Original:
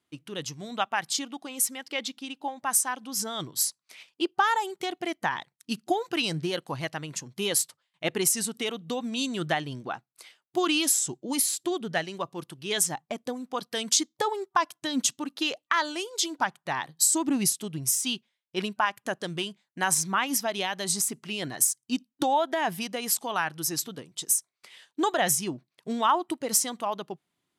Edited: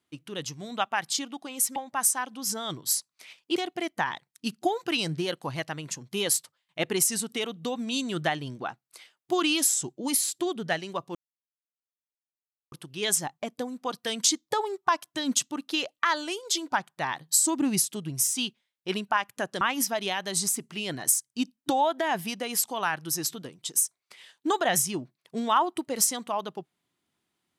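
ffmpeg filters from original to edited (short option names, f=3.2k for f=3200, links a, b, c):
-filter_complex "[0:a]asplit=5[a][b][c][d][e];[a]atrim=end=1.762[f];[b]atrim=start=2.458:end=4.262[g];[c]atrim=start=4.808:end=12.4,asetpts=PTS-STARTPTS,afade=t=out:st=7.588:d=0.004:c=hsin,apad=pad_dur=1.57[h];[d]atrim=start=12.4:end=19.292,asetpts=PTS-STARTPTS,afade=t=in:d=0.004:c=hsin[i];[e]atrim=start=20.138[j];[f][g]acrossfade=d=0.004:c1=hsin:c2=hsin[k];[h][i]concat=n=2:v=0:a=1[l];[k][l]acrossfade=d=0.004:c1=hsin:c2=hsin[m];[m][j]acrossfade=d=0.004:c1=hsin:c2=hsin"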